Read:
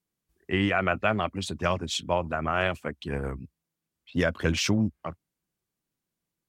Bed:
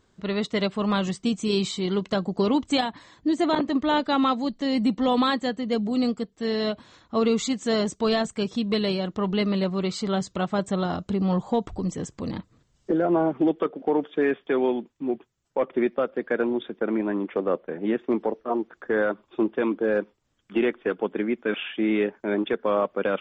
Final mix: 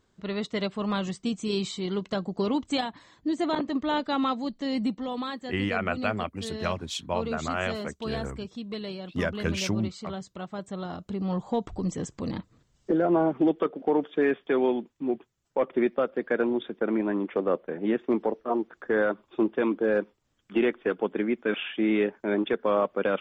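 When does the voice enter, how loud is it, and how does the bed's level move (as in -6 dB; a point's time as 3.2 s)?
5.00 s, -3.5 dB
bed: 4.85 s -4.5 dB
5.07 s -11 dB
10.58 s -11 dB
11.91 s -1 dB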